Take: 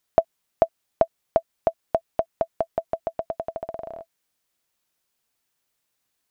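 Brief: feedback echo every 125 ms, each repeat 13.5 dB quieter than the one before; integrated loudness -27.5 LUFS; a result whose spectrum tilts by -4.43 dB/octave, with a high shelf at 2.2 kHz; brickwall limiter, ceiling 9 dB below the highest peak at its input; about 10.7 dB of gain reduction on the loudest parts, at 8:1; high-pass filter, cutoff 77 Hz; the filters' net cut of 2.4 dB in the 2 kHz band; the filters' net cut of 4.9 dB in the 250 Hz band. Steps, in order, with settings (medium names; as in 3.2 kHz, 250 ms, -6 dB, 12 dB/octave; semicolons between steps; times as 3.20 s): high-pass 77 Hz; peaking EQ 250 Hz -7 dB; peaking EQ 2 kHz -6 dB; treble shelf 2.2 kHz +5.5 dB; compression 8:1, threshold -28 dBFS; peak limiter -19.5 dBFS; feedback delay 125 ms, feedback 21%, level -13.5 dB; trim +13 dB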